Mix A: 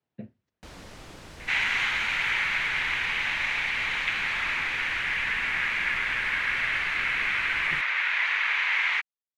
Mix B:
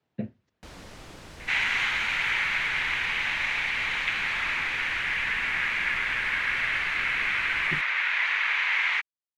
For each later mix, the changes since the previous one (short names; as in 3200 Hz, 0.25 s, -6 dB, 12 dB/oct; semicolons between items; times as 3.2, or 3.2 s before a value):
speech +8.0 dB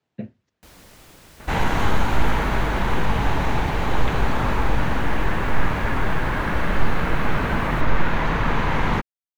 first sound -4.0 dB; second sound: remove resonant high-pass 2200 Hz, resonance Q 3.1; master: remove air absorption 61 m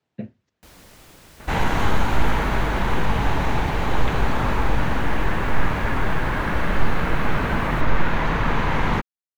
none